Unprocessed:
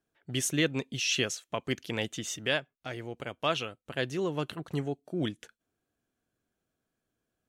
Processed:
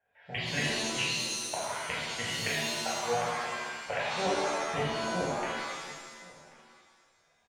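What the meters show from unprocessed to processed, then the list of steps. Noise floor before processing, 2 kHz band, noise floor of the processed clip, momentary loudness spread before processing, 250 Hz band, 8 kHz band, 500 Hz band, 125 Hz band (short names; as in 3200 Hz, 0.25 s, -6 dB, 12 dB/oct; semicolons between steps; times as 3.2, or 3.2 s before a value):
-85 dBFS, +2.5 dB, -69 dBFS, 11 LU, -5.0 dB, +1.0 dB, +0.5 dB, -4.0 dB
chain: three-band isolator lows -17 dB, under 460 Hz, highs -24 dB, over 2500 Hz; in parallel at -2 dB: level quantiser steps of 11 dB; on the sum: flipped gate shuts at -27 dBFS, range -31 dB; fixed phaser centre 1200 Hz, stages 6; on a send: echo 1.087 s -22.5 dB; on the sum: shimmer reverb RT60 1.4 s, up +7 st, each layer -2 dB, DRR -7.5 dB; gain +7.5 dB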